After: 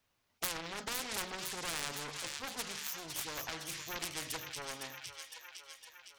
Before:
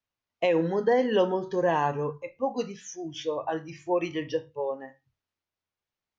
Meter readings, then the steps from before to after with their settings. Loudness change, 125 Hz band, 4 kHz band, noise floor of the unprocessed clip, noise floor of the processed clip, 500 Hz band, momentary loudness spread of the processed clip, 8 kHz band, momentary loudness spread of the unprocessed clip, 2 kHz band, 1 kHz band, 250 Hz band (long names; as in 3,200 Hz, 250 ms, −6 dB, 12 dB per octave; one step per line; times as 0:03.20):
−11.0 dB, −14.5 dB, +2.0 dB, below −85 dBFS, −78 dBFS, −22.5 dB, 11 LU, can't be measured, 11 LU, −4.0 dB, −14.0 dB, −19.0 dB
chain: phase distortion by the signal itself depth 0.64 ms
delay with a high-pass on its return 509 ms, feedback 58%, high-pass 3,500 Hz, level −9 dB
every bin compressed towards the loudest bin 4 to 1